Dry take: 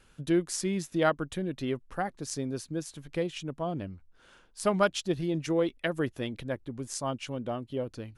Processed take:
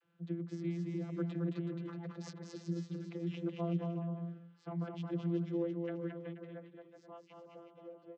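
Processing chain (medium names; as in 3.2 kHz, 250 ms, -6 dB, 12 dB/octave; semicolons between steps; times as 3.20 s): Doppler pass-by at 2.26 s, 8 m/s, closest 3.3 m; low-pass 2.9 kHz 12 dB/octave; treble shelf 2.2 kHz +7.5 dB; compressor with a negative ratio -40 dBFS, ratio -0.5; vocoder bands 32, saw 170 Hz; bouncing-ball echo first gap 220 ms, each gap 0.7×, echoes 5; trim +5 dB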